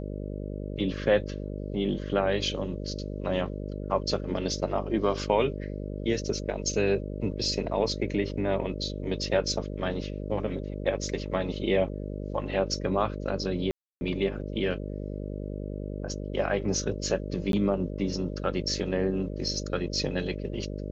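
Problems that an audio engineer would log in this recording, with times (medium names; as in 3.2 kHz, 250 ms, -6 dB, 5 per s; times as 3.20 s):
buzz 50 Hz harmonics 12 -35 dBFS
13.71–14.01 s: dropout 300 ms
17.52–17.53 s: dropout 12 ms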